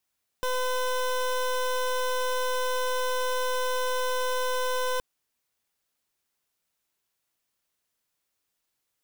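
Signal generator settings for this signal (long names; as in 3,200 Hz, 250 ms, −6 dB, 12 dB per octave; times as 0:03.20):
pulse wave 507 Hz, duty 22% −27 dBFS 4.57 s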